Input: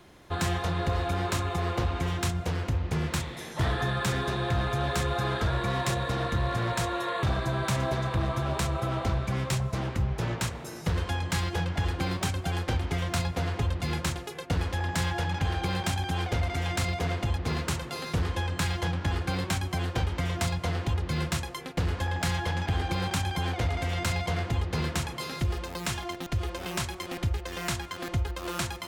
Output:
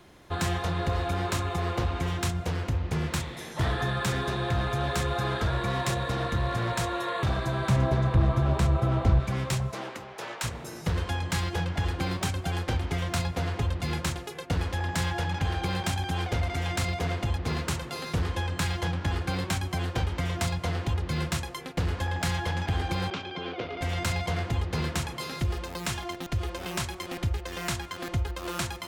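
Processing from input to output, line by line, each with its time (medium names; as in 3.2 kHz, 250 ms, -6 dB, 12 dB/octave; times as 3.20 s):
7.68–9.20 s: tilt EQ -2 dB/octave
9.71–10.43 s: high-pass 300 Hz -> 640 Hz
23.10–23.81 s: cabinet simulation 250–4200 Hz, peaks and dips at 410 Hz +7 dB, 850 Hz -9 dB, 1.8 kHz -8 dB, 4 kHz -4 dB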